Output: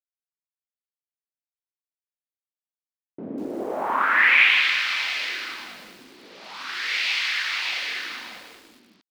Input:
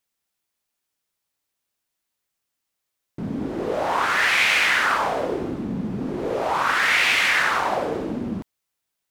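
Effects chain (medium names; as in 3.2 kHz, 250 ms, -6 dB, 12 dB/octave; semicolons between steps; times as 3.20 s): peaking EQ 320 Hz +9 dB 1.3 oct; crossover distortion -46 dBFS; FFT filter 220 Hz 0 dB, 470 Hz -5 dB, 2.3 kHz +4 dB, 7.1 kHz -5 dB; wow and flutter 24 cents; on a send: delay 589 ms -4 dB; on the sum: band-pass sweep 540 Hz -> 4.6 kHz, 3.50–4.75 s; bit-crushed delay 195 ms, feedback 55%, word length 8-bit, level -7.5 dB; trim +2 dB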